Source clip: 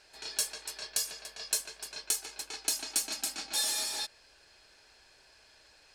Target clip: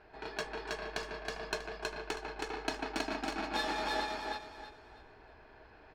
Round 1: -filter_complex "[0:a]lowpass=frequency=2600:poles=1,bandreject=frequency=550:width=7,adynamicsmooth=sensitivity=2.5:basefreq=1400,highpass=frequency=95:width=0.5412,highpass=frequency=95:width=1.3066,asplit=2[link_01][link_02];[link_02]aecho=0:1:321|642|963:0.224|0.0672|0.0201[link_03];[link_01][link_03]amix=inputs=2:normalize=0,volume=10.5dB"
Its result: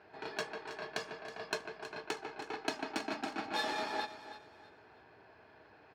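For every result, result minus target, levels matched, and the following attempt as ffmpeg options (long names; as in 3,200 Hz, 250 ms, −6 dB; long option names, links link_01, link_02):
echo-to-direct −11 dB; 125 Hz band −4.0 dB
-filter_complex "[0:a]lowpass=frequency=2600:poles=1,bandreject=frequency=550:width=7,adynamicsmooth=sensitivity=2.5:basefreq=1400,highpass=frequency=95:width=0.5412,highpass=frequency=95:width=1.3066,asplit=2[link_01][link_02];[link_02]aecho=0:1:321|642|963|1284:0.794|0.238|0.0715|0.0214[link_03];[link_01][link_03]amix=inputs=2:normalize=0,volume=10.5dB"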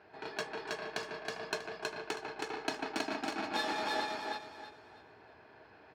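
125 Hz band −4.0 dB
-filter_complex "[0:a]lowpass=frequency=2600:poles=1,bandreject=frequency=550:width=7,adynamicsmooth=sensitivity=2.5:basefreq=1400,asplit=2[link_01][link_02];[link_02]aecho=0:1:321|642|963|1284:0.794|0.238|0.0715|0.0214[link_03];[link_01][link_03]amix=inputs=2:normalize=0,volume=10.5dB"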